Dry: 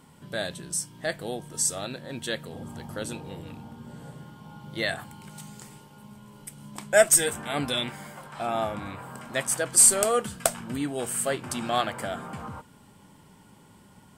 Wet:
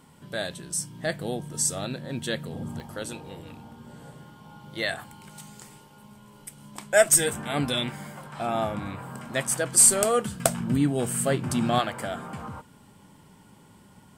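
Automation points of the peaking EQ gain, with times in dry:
peaking EQ 150 Hz 2 oct
-0.5 dB
from 0.78 s +6.5 dB
from 2.80 s -3.5 dB
from 7.06 s +5 dB
from 10.40 s +12 dB
from 11.79 s +1 dB

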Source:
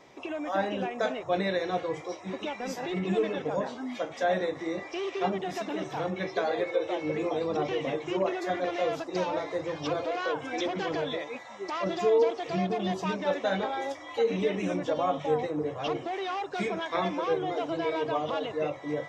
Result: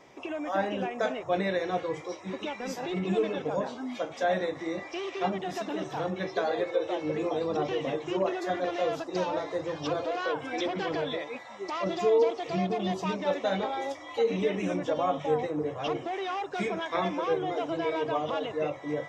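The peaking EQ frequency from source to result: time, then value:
peaking EQ -5.5 dB 0.22 oct
4 kHz
from 1.81 s 700 Hz
from 2.77 s 1.9 kHz
from 4.24 s 420 Hz
from 5.46 s 2.2 kHz
from 10.25 s 6.5 kHz
from 11.59 s 1.6 kHz
from 14.40 s 4.3 kHz

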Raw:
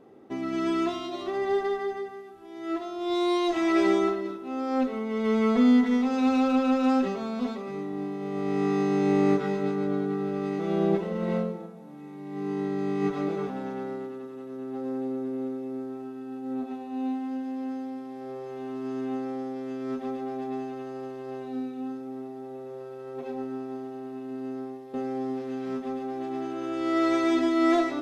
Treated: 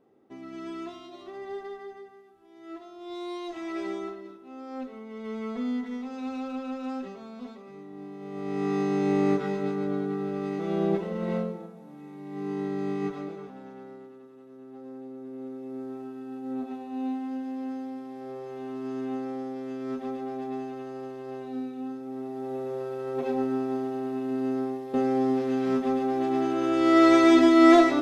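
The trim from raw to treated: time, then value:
7.84 s -11 dB
8.75 s -1.5 dB
12.92 s -1.5 dB
13.41 s -10.5 dB
15.13 s -10.5 dB
15.90 s -1 dB
22.00 s -1 dB
22.54 s +6.5 dB

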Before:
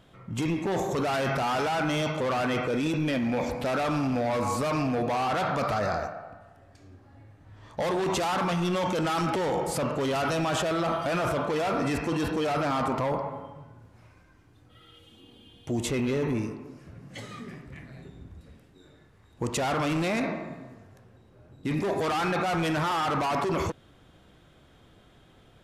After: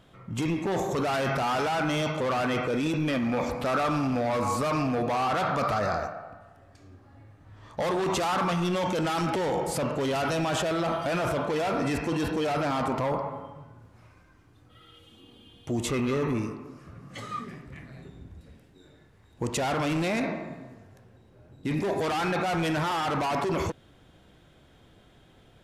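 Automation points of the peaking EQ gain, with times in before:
peaking EQ 1.2 kHz 0.24 oct
+1.5 dB
from 3.08 s +10.5 dB
from 3.86 s +4 dB
from 8.67 s -3.5 dB
from 13.04 s +4 dB
from 15.88 s +13.5 dB
from 17.44 s +3 dB
from 18.19 s -4 dB

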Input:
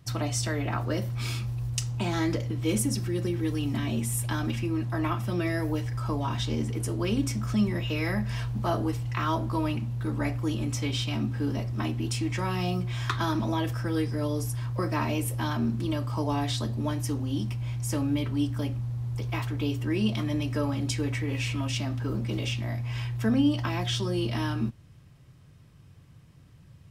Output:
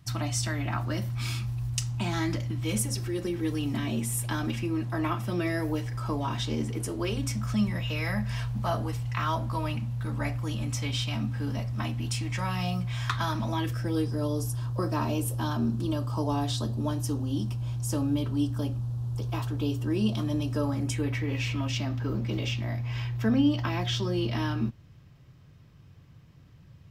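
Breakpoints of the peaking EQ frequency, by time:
peaking EQ -13.5 dB 0.48 oct
2.60 s 460 Hz
3.49 s 77 Hz
6.81 s 77 Hz
7.23 s 360 Hz
13.49 s 360 Hz
14.01 s 2.1 kHz
20.64 s 2.1 kHz
21.21 s 9.4 kHz

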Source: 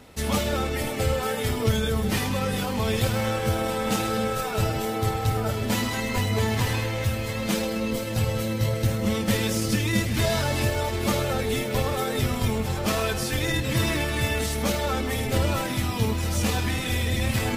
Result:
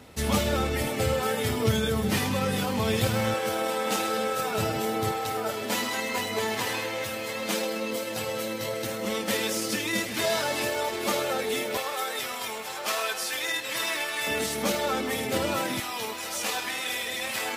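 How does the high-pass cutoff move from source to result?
49 Hz
from 0.87 s 100 Hz
from 3.34 s 330 Hz
from 4.38 s 160 Hz
from 5.12 s 340 Hz
from 11.77 s 720 Hz
from 14.27 s 220 Hz
from 15.80 s 590 Hz

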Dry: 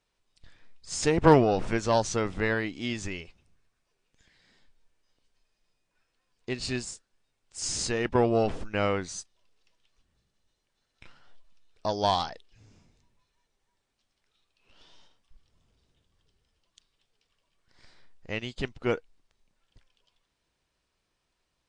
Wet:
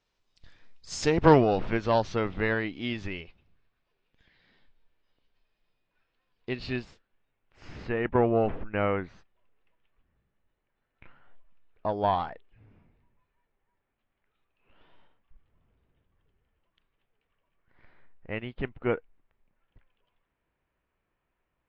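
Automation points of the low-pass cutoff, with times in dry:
low-pass 24 dB/octave
0.92 s 6.6 kHz
1.73 s 3.9 kHz
6.50 s 3.9 kHz
7.71 s 2.4 kHz

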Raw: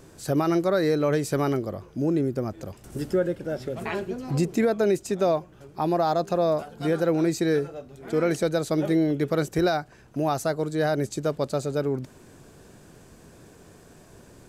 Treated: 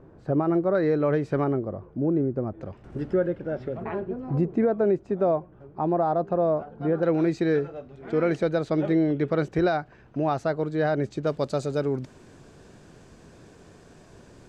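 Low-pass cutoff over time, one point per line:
1.1 kHz
from 0.75 s 1.9 kHz
from 1.44 s 1.1 kHz
from 2.61 s 2.1 kHz
from 3.77 s 1.2 kHz
from 7.03 s 2.9 kHz
from 11.27 s 6.5 kHz

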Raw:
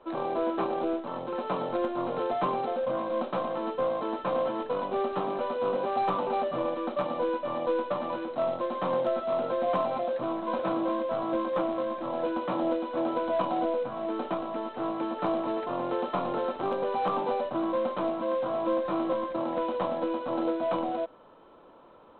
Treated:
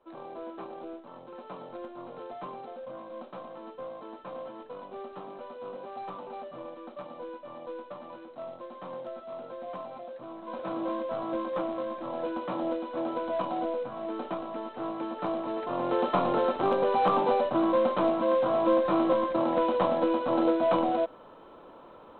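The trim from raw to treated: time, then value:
10.27 s -12 dB
10.86 s -3 dB
15.49 s -3 dB
16.05 s +4 dB

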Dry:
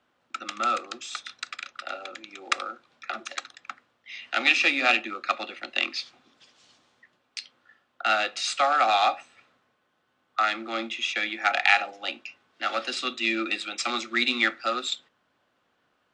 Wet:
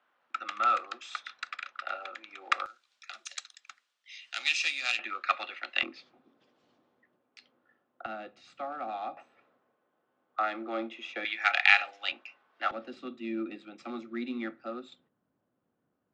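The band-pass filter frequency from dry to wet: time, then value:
band-pass filter, Q 0.8
1.3 kHz
from 2.66 s 7.4 kHz
from 4.99 s 1.7 kHz
from 5.83 s 340 Hz
from 8.06 s 120 Hz
from 9.17 s 470 Hz
from 11.25 s 2.3 kHz
from 12.12 s 930 Hz
from 12.71 s 170 Hz

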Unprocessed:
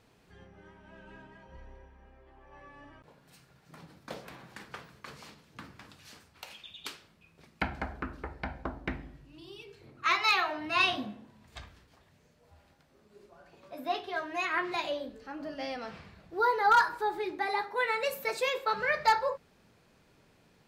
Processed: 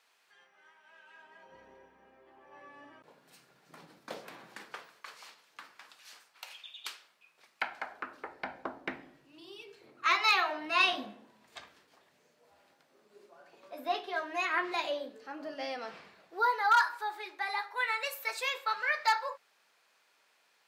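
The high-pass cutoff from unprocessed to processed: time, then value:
1.14 s 1.1 kHz
1.60 s 260 Hz
4.54 s 260 Hz
5.08 s 790 Hz
7.79 s 790 Hz
8.50 s 330 Hz
16.07 s 330 Hz
16.68 s 960 Hz

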